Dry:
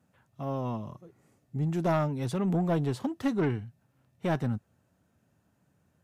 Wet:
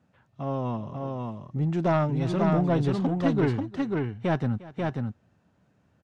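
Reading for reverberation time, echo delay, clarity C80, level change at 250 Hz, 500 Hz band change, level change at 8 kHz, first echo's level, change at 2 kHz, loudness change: no reverb, 353 ms, no reverb, +4.5 dB, +4.5 dB, no reading, -19.5 dB, +4.5 dB, +3.5 dB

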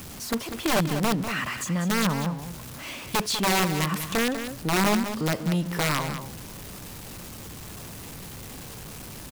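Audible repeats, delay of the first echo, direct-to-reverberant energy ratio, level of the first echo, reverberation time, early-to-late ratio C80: 1, 195 ms, no reverb, -9.5 dB, no reverb, no reverb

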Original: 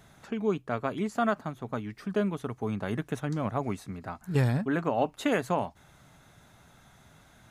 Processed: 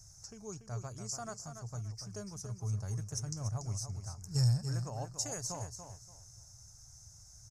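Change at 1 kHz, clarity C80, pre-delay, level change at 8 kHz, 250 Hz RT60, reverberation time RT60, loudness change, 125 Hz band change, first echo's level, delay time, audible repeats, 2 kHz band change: -15.5 dB, no reverb, no reverb, +11.5 dB, no reverb, no reverb, -7.0 dB, -1.5 dB, -8.5 dB, 287 ms, 3, -19.0 dB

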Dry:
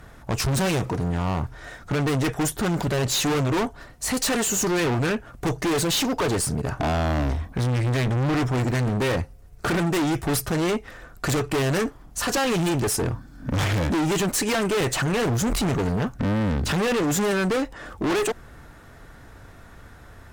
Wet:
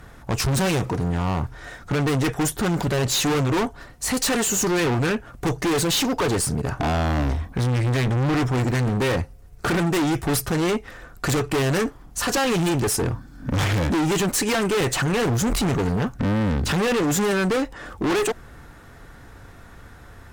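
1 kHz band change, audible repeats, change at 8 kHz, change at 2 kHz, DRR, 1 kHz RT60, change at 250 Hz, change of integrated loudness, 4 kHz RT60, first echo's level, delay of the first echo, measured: +1.5 dB, no echo, +1.5 dB, +1.5 dB, no reverb, no reverb, +1.5 dB, +1.5 dB, no reverb, no echo, no echo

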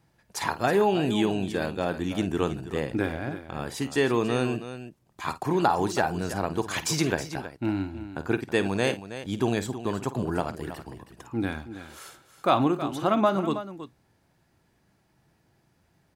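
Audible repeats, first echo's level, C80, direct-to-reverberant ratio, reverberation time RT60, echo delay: 2, -13.5 dB, no reverb, no reverb, no reverb, 51 ms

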